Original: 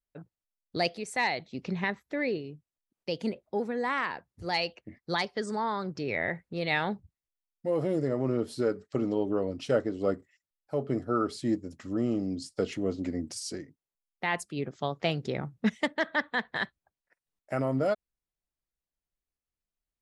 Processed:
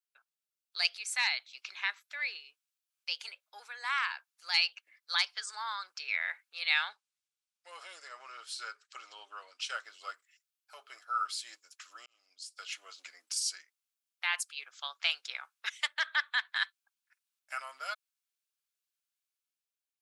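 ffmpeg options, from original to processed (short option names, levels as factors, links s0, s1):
-filter_complex "[0:a]asettb=1/sr,asplit=3[s0][s1][s2];[s0]atrim=end=6.634[s3];[s1]atrim=start=6.63:end=9.75,asetpts=PTS-STARTPTS,afade=t=in:d=0.004:c=qsin,afade=t=out:st=3.116:d=0.004:c=qsin,lowpass=f=9400:w=0.5412,lowpass=f=9400:w=1.3066[s4];[s2]atrim=start=9.746[s5];[s3][s4]acrossfade=d=0.004:c1=hsin:c2=qsin[s6];[s6][s5]acrossfade=d=0.004:c1=qsin:c2=hsin,asplit=2[s7][s8];[s7]atrim=end=12.06,asetpts=PTS-STARTPTS,afade=t=out:st=12.056:d=0.004:c=hsin[s9];[s8]atrim=start=12.06,asetpts=PTS-STARTPTS,afade=t=in:d=0.83[s10];[s9][s10]concat=n=2:v=0:a=1,highpass=f=1400:w=0.5412,highpass=f=1400:w=1.3066,dynaudnorm=f=120:g=11:m=1.88,equalizer=f=1900:w=6.8:g=-11.5"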